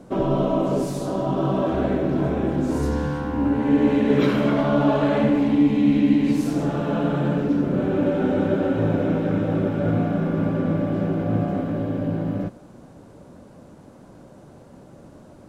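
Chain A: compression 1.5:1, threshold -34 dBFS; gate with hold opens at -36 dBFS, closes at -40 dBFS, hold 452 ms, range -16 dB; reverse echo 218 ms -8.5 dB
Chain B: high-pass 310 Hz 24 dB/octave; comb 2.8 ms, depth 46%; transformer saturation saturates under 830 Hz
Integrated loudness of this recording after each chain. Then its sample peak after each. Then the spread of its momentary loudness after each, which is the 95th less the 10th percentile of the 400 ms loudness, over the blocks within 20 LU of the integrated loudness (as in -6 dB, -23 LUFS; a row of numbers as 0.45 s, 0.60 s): -27.0 LUFS, -25.5 LUFS; -13.0 dBFS, -9.5 dBFS; 21 LU, 6 LU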